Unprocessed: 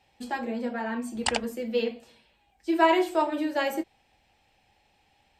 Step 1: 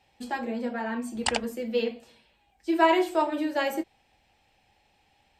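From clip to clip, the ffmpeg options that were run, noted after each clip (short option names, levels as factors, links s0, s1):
-af anull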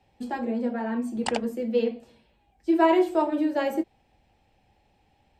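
-filter_complex "[0:a]tiltshelf=f=810:g=6,acrossover=split=140[s0][s1];[s0]acompressor=threshold=0.002:ratio=6[s2];[s2][s1]amix=inputs=2:normalize=0"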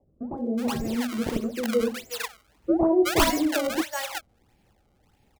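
-filter_complex "[0:a]acrossover=split=210[s0][s1];[s1]acrusher=samples=29:mix=1:aa=0.000001:lfo=1:lforange=46.4:lforate=1.6[s2];[s0][s2]amix=inputs=2:normalize=0,acrossover=split=740[s3][s4];[s4]adelay=370[s5];[s3][s5]amix=inputs=2:normalize=0,volume=1.19"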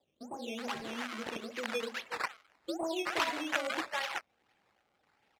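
-af "acompressor=threshold=0.0501:ratio=2.5,acrusher=samples=10:mix=1:aa=0.000001:lfo=1:lforange=10:lforate=2.4,bandpass=f=1900:t=q:w=0.64:csg=0"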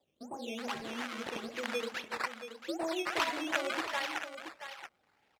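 -af "aecho=1:1:678:0.316"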